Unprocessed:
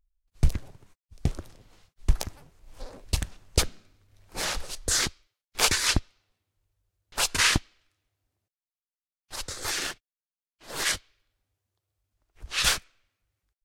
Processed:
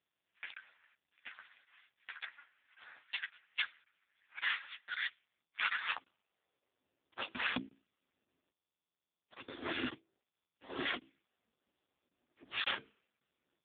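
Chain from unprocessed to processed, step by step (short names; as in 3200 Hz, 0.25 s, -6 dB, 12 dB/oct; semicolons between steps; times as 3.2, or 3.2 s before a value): notches 60/120/180/240/300/360/420/480 Hz; vocal rider within 4 dB 0.5 s; 10.75–12.77 notch comb 510 Hz; chorus voices 6, 0.19 Hz, delay 12 ms, depth 1.9 ms; frequency shift -31 Hz; high-pass sweep 1700 Hz -> 230 Hz, 5.51–7.02; crackling interface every 0.55 s, samples 1024, zero, from 0.54; AMR-NB 5.15 kbps 8000 Hz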